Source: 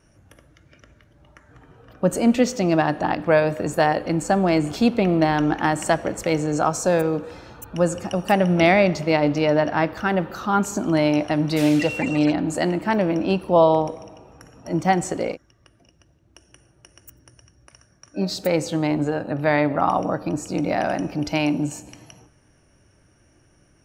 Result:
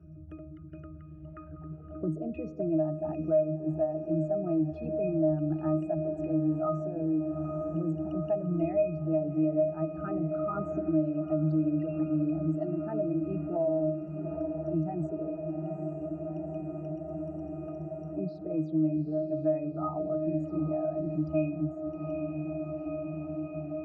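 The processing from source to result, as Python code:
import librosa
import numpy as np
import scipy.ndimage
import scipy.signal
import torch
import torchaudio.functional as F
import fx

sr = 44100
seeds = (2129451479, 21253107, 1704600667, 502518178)

p1 = fx.envelope_sharpen(x, sr, power=2.0)
p2 = fx.octave_resonator(p1, sr, note='D#', decay_s=0.36)
p3 = p2 + fx.echo_diffused(p2, sr, ms=832, feedback_pct=72, wet_db=-13.0, dry=0)
p4 = fx.band_squash(p3, sr, depth_pct=70)
y = p4 * 10.0 ** (3.0 / 20.0)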